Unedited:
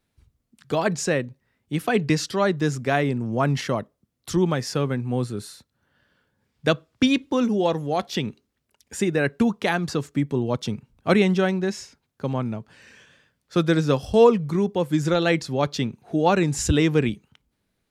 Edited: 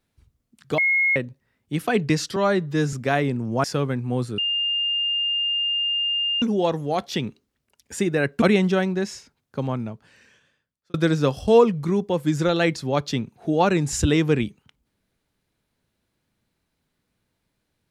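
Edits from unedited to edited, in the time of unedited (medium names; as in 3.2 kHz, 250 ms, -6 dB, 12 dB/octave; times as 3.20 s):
0.78–1.16 s: bleep 2.16 kHz -16.5 dBFS
2.36–2.74 s: stretch 1.5×
3.45–4.65 s: delete
5.39–7.43 s: bleep 2.81 kHz -20.5 dBFS
9.43–11.08 s: delete
12.30–13.60 s: fade out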